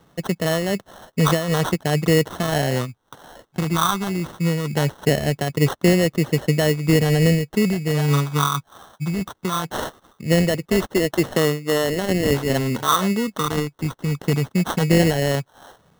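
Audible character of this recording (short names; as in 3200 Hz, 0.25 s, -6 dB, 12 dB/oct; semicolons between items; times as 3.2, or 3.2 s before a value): a quantiser's noise floor 12-bit, dither triangular; phasing stages 8, 0.2 Hz, lowest notch 580–1800 Hz; aliases and images of a low sample rate 2400 Hz, jitter 0%; noise-modulated level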